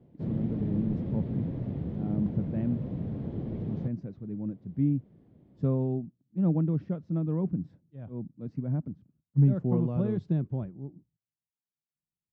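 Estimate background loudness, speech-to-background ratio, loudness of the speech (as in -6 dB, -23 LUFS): -35.0 LUFS, 4.0 dB, -31.0 LUFS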